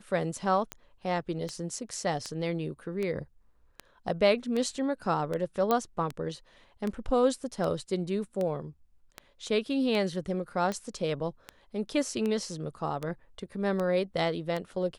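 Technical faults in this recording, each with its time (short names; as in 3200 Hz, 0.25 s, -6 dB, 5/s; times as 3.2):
tick 78 rpm -20 dBFS
5.71 pop -13 dBFS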